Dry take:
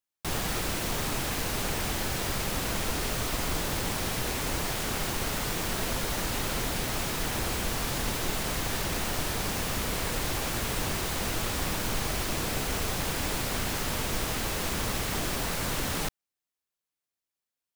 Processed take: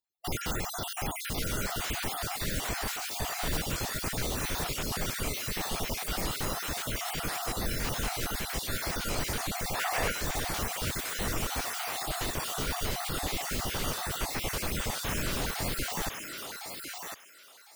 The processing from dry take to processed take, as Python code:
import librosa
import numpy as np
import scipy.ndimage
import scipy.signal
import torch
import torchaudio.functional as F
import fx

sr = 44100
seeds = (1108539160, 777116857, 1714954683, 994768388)

y = fx.spec_dropout(x, sr, seeds[0], share_pct=46)
y = fx.echo_thinned(y, sr, ms=1055, feedback_pct=22, hz=930.0, wet_db=-4)
y = fx.formant_shift(y, sr, semitones=-4)
y = fx.spec_box(y, sr, start_s=9.75, length_s=0.36, low_hz=410.0, high_hz=2900.0, gain_db=6)